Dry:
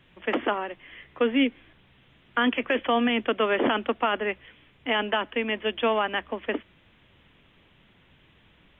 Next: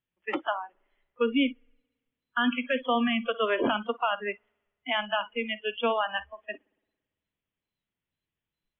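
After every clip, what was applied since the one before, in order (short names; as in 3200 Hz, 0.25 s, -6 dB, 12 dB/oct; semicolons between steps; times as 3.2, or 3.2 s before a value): spring tank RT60 1.5 s, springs 56 ms, chirp 60 ms, DRR 11 dB; wow and flutter 28 cents; spectral noise reduction 30 dB; gain -2 dB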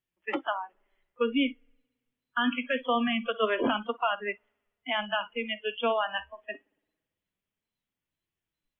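flange 0.24 Hz, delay 2.6 ms, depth 5.7 ms, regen +73%; gain +3.5 dB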